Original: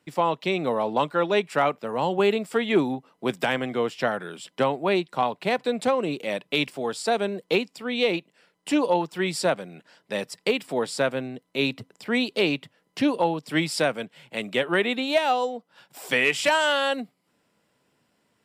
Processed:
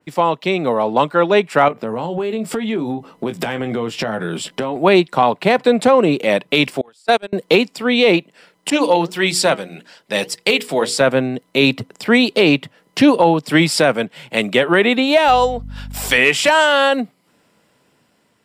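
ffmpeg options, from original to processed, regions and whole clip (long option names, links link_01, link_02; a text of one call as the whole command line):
ffmpeg -i in.wav -filter_complex "[0:a]asettb=1/sr,asplit=3[link_01][link_02][link_03];[link_01]atrim=end=1.684[link_04];[link_02]atrim=start=1.68:end=4.76,asetpts=PTS-STARTPTS,afade=type=in:duration=0.004:curve=qsin,afade=type=out:start_time=3.076:duration=0.004:curve=qsin,lowshelf=frequency=420:gain=8,asplit=2[link_05][link_06];[link_06]adelay=18,volume=-7.5dB[link_07];[link_05][link_07]amix=inputs=2:normalize=0,atrim=end_sample=135828,acompressor=threshold=-31dB:ratio=8:attack=3.2:release=140:knee=1:detection=peak[link_08];[link_03]atrim=start=4.756[link_09];[link_04][link_08]acrossfade=duration=0.004:curve1=hsin:curve2=qsin[link_10];[link_10][link_09]acrossfade=duration=0.004:curve1=qsin:curve2=hsin,asettb=1/sr,asplit=3[link_11][link_12][link_13];[link_11]atrim=end=6.814[link_14];[link_12]atrim=start=6.81:end=7.33,asetpts=PTS-STARTPTS,afade=type=in:duration=0.004:curve=qsin,afade=type=out:start_time=0.516:duration=0.004:curve=qsin,tiltshelf=frequency=700:gain=-3.5,agate=range=-33dB:threshold=-23dB:ratio=16:release=100:detection=peak[link_15];[link_13]atrim=start=7.326[link_16];[link_14][link_15]acrossfade=duration=0.004:curve1=hsin:curve2=qsin[link_17];[link_17][link_16]acrossfade=duration=0.004:curve1=qsin:curve2=hsin,asettb=1/sr,asplit=3[link_18][link_19][link_20];[link_18]atrim=end=8.704[link_21];[link_19]atrim=start=8.7:end=11.01,asetpts=PTS-STARTPTS,afade=type=in:duration=0.004:curve=qsin,afade=type=out:start_time=2.306:duration=0.004:curve=qsin,flanger=delay=1.2:depth=5.1:regen=76:speed=1.7:shape=sinusoidal,bandreject=frequency=60:width_type=h:width=6,bandreject=frequency=120:width_type=h:width=6,bandreject=frequency=180:width_type=h:width=6,bandreject=frequency=240:width_type=h:width=6,bandreject=frequency=300:width_type=h:width=6,bandreject=frequency=360:width_type=h:width=6,bandreject=frequency=420:width_type=h:width=6,bandreject=frequency=480:width_type=h:width=6,adynamicequalizer=threshold=0.00562:dfrequency=2000:dqfactor=0.7:tfrequency=2000:tqfactor=0.7:attack=5:release=100:ratio=0.375:range=3.5:mode=boostabove:tftype=highshelf[link_22];[link_20]atrim=start=11.006[link_23];[link_21][link_22]acrossfade=duration=0.004:curve1=hsin:curve2=qsin[link_24];[link_24][link_23]acrossfade=duration=0.004:curve1=qsin:curve2=hsin,asettb=1/sr,asplit=3[link_25][link_26][link_27];[link_25]atrim=end=15.284[link_28];[link_26]atrim=start=15.28:end=16.18,asetpts=PTS-STARTPTS,afade=type=in:duration=0.004:curve=qsin,afade=type=out:start_time=0.896:duration=0.004:curve=qsin,tiltshelf=frequency=800:gain=-4,aeval=exprs='val(0)+0.00891*(sin(2*PI*50*n/s)+sin(2*PI*2*50*n/s)/2+sin(2*PI*3*50*n/s)/3+sin(2*PI*4*50*n/s)/4+sin(2*PI*5*50*n/s)/5)':channel_layout=same[link_29];[link_27]atrim=start=16.176[link_30];[link_28][link_29]acrossfade=duration=0.004:curve1=hsin:curve2=qsin[link_31];[link_31][link_30]acrossfade=duration=0.004:curve1=qsin:curve2=hsin,dynaudnorm=framelen=630:gausssize=5:maxgain=6.5dB,alimiter=limit=-9dB:level=0:latency=1:release=25,adynamicequalizer=threshold=0.0158:dfrequency=2600:dqfactor=0.7:tfrequency=2600:tqfactor=0.7:attack=5:release=100:ratio=0.375:range=2.5:mode=cutabove:tftype=highshelf,volume=7dB" out.wav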